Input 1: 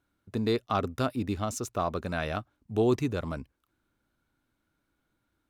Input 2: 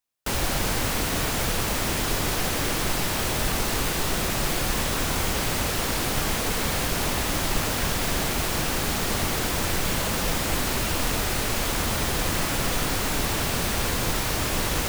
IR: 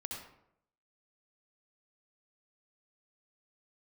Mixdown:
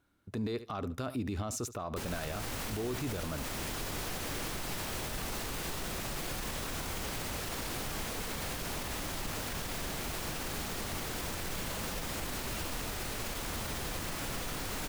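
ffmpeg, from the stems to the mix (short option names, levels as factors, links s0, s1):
-filter_complex "[0:a]alimiter=limit=0.0668:level=0:latency=1:release=51,volume=1.41,asplit=2[s0][s1];[s1]volume=0.106[s2];[1:a]adelay=1700,volume=0.316[s3];[s2]aecho=0:1:72|144|216:1|0.18|0.0324[s4];[s0][s3][s4]amix=inputs=3:normalize=0,alimiter=level_in=1.5:limit=0.0631:level=0:latency=1:release=42,volume=0.668"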